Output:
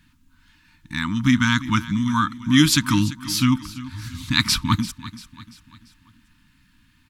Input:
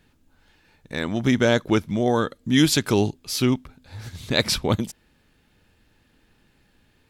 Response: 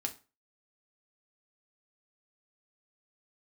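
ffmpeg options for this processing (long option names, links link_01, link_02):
-filter_complex "[0:a]afftfilt=real='re*(1-between(b*sr/4096,320,890))':imag='im*(1-between(b*sr/4096,320,890))':win_size=4096:overlap=0.75,adynamicequalizer=threshold=0.00562:dfrequency=1200:dqfactor=3.7:tfrequency=1200:tqfactor=3.7:attack=5:release=100:ratio=0.375:range=3:mode=boostabove:tftype=bell,asplit=2[link_01][link_02];[link_02]aecho=0:1:342|684|1026|1368:0.15|0.0703|0.0331|0.0155[link_03];[link_01][link_03]amix=inputs=2:normalize=0,volume=3dB"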